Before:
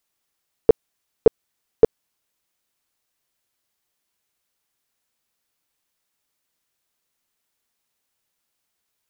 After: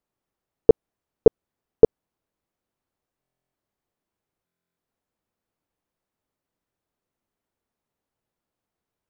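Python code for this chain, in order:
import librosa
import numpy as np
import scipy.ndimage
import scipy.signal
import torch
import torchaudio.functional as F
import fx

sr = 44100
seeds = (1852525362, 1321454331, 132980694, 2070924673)

y = fx.tilt_shelf(x, sr, db=10.0, hz=1500.0)
y = fx.buffer_glitch(y, sr, at_s=(3.21, 4.45), block=1024, repeats=13)
y = F.gain(torch.from_numpy(y), -6.0).numpy()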